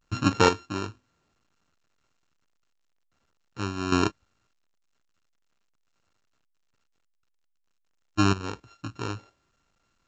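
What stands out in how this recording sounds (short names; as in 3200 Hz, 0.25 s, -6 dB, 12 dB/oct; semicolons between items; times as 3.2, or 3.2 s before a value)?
a buzz of ramps at a fixed pitch in blocks of 32 samples; chopped level 0.51 Hz, depth 65%, duty 25%; A-law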